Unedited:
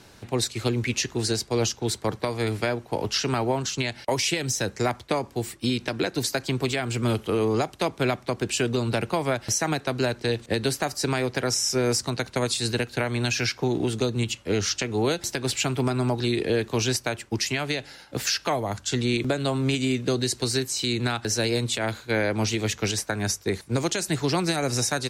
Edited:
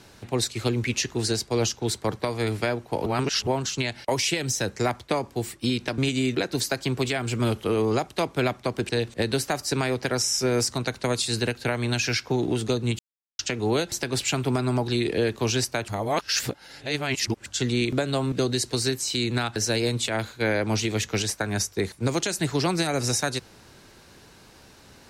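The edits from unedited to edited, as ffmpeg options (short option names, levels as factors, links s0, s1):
-filter_complex "[0:a]asplit=11[s0][s1][s2][s3][s4][s5][s6][s7][s8][s9][s10];[s0]atrim=end=3.062[s11];[s1]atrim=start=3.058:end=3.472,asetpts=PTS-STARTPTS,areverse[s12];[s2]atrim=start=3.468:end=5.982[s13];[s3]atrim=start=19.638:end=20.012[s14];[s4]atrim=start=5.978:end=8.522[s15];[s5]atrim=start=10.208:end=14.31,asetpts=PTS-STARTPTS,afade=t=out:st=4.098:d=0.004:c=hsin[s16];[s6]atrim=start=14.31:end=14.71,asetpts=PTS-STARTPTS,volume=0[s17];[s7]atrim=start=14.71:end=17.202,asetpts=PTS-STARTPTS,afade=t=in:d=0.004:c=hsin[s18];[s8]atrim=start=17.198:end=18.782,asetpts=PTS-STARTPTS,areverse[s19];[s9]atrim=start=18.778:end=19.642[s20];[s10]atrim=start=20.008[s21];[s11][s12]acrossfade=d=0.004:c1=hsin:c2=hsin[s22];[s22][s13]acrossfade=d=0.004:c1=hsin:c2=hsin[s23];[s23][s14]acrossfade=d=0.004:c1=hsin:c2=hsin[s24];[s24][s15]acrossfade=d=0.004:c1=hsin:c2=hsin[s25];[s16][s17][s18]concat=n=3:v=0:a=1[s26];[s25][s26]acrossfade=d=0.004:c1=hsin:c2=hsin[s27];[s27][s19]acrossfade=d=0.004:c1=hsin:c2=hsin[s28];[s28][s20]acrossfade=d=0.004:c1=hsin:c2=hsin[s29];[s29][s21]acrossfade=d=0.004:c1=hsin:c2=hsin"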